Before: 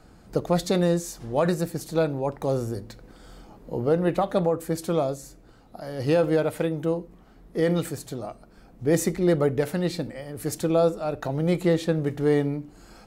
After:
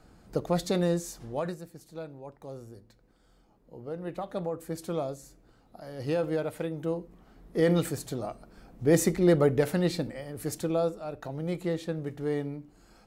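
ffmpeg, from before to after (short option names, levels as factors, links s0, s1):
-af "volume=3.98,afade=t=out:st=1.16:d=0.45:silence=0.237137,afade=t=in:st=3.81:d=1.02:silence=0.334965,afade=t=in:st=6.67:d=1.08:silence=0.446684,afade=t=out:st=9.81:d=1.21:silence=0.375837"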